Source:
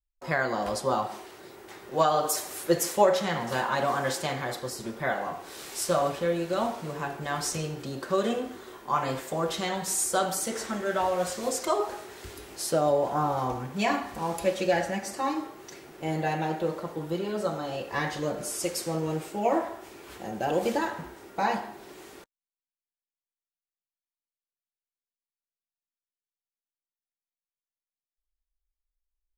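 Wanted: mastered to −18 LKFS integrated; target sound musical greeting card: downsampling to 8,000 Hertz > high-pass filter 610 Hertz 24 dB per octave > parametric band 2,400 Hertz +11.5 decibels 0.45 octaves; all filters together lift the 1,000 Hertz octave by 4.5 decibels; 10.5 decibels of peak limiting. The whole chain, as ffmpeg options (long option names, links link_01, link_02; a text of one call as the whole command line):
ffmpeg -i in.wav -af "equalizer=frequency=1000:width_type=o:gain=6,alimiter=limit=-15.5dB:level=0:latency=1,aresample=8000,aresample=44100,highpass=frequency=610:width=0.5412,highpass=frequency=610:width=1.3066,equalizer=frequency=2400:width_type=o:width=0.45:gain=11.5,volume=11.5dB" out.wav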